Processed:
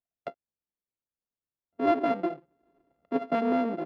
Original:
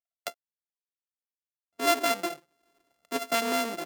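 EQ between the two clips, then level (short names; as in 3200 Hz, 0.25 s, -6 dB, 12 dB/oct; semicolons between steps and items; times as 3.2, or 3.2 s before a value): air absorption 360 m; tilt shelf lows +8.5 dB; 0.0 dB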